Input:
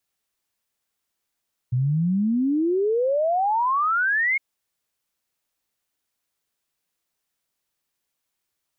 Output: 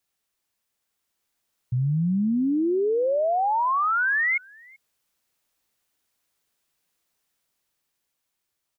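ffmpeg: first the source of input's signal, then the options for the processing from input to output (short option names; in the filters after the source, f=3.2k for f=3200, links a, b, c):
-f lavfi -i "aevalsrc='0.119*clip(min(t,2.66-t)/0.01,0,1)*sin(2*PI*120*2.66/log(2200/120)*(exp(log(2200/120)*t/2.66)-1))':d=2.66:s=44100"
-filter_complex "[0:a]alimiter=limit=-23.5dB:level=0:latency=1:release=71,dynaudnorm=f=240:g=11:m=4dB,asplit=2[a][b];[b]adelay=384.8,volume=-25dB,highshelf=f=4k:g=-8.66[c];[a][c]amix=inputs=2:normalize=0"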